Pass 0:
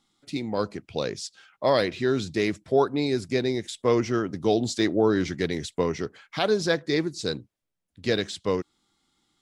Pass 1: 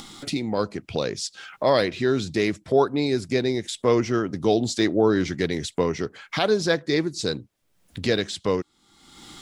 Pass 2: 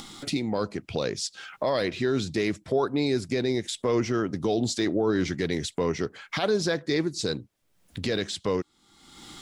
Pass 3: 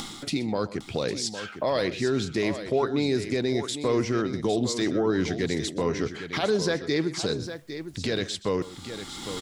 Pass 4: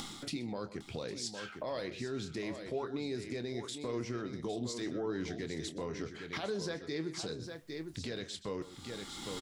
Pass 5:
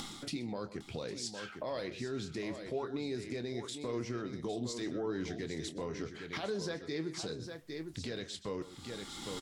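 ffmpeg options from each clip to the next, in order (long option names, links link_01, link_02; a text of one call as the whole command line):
ffmpeg -i in.wav -af "acompressor=mode=upward:threshold=-24dB:ratio=2.5,volume=2dB" out.wav
ffmpeg -i in.wav -af "alimiter=limit=-14.5dB:level=0:latency=1:release=13,volume=-1dB" out.wav
ffmpeg -i in.wav -af "areverse,acompressor=mode=upward:threshold=-27dB:ratio=2.5,areverse,aecho=1:1:125|806:0.141|0.299" out.wav
ffmpeg -i in.wav -filter_complex "[0:a]alimiter=limit=-21.5dB:level=0:latency=1:release=316,asplit=2[link_01][link_02];[link_02]adelay=25,volume=-11dB[link_03];[link_01][link_03]amix=inputs=2:normalize=0,volume=-7dB" out.wav
ffmpeg -i in.wav -ar 48000 -c:a libvorbis -b:a 96k out.ogg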